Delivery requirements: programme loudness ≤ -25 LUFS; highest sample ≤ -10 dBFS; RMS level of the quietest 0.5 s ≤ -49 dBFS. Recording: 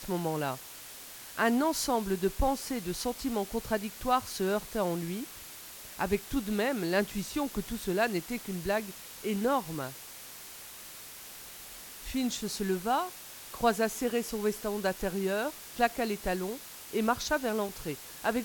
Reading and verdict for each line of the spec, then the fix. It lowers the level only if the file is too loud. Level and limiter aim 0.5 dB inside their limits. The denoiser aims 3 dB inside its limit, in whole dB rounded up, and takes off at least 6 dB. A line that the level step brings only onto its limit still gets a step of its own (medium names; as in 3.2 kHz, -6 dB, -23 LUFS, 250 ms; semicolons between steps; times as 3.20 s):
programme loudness -32.0 LUFS: pass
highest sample -13.0 dBFS: pass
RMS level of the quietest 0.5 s -47 dBFS: fail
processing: noise reduction 6 dB, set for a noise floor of -47 dBFS